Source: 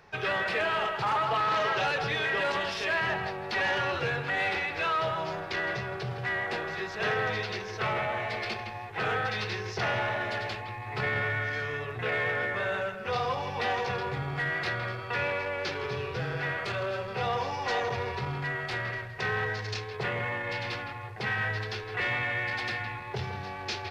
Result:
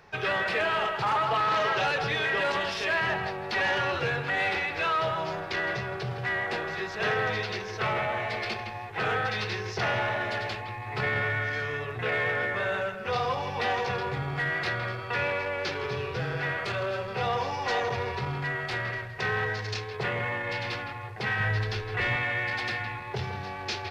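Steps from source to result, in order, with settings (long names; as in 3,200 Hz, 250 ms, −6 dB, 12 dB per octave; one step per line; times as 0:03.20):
0:21.40–0:22.16: low-shelf EQ 110 Hz +12 dB
level +1.5 dB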